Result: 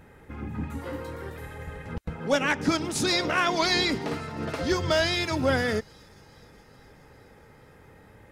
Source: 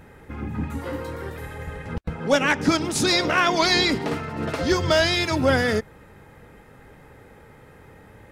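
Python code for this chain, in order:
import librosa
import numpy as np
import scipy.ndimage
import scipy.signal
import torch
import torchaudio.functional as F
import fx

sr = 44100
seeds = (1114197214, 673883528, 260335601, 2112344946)

y = fx.echo_wet_highpass(x, sr, ms=419, feedback_pct=63, hz=5200.0, wet_db=-20.0)
y = F.gain(torch.from_numpy(y), -4.5).numpy()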